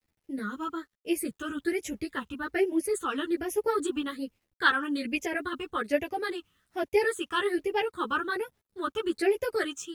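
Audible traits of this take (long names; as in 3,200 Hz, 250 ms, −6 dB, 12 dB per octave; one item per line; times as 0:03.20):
phaser sweep stages 8, 1.2 Hz, lowest notch 610–1,300 Hz
a quantiser's noise floor 12 bits, dither none
a shimmering, thickened sound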